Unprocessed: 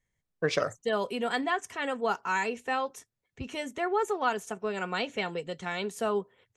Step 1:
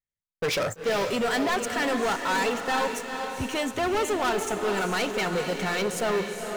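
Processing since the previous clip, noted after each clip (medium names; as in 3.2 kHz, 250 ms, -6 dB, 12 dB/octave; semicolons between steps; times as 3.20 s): waveshaping leveller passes 5; echo that smears into a reverb 453 ms, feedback 48%, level -6 dB; trim -8 dB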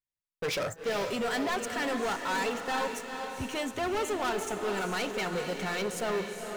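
de-hum 164.1 Hz, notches 12; trim -5 dB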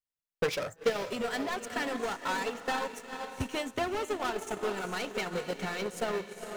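transient shaper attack +11 dB, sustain -6 dB; trim -4 dB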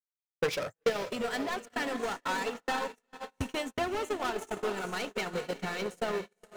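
gate -37 dBFS, range -32 dB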